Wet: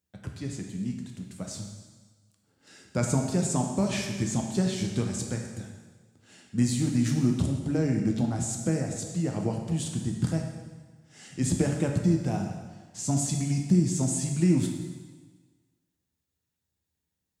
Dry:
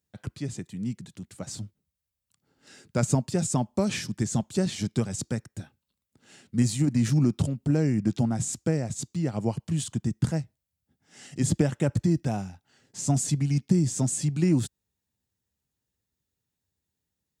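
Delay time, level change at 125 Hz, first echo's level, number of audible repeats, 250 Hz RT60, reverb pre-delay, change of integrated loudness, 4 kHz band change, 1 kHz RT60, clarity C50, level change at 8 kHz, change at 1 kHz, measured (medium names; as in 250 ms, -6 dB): no echo, -1.5 dB, no echo, no echo, 1.4 s, 7 ms, -1.0 dB, -0.5 dB, 1.4 s, 4.0 dB, -0.5 dB, -0.5 dB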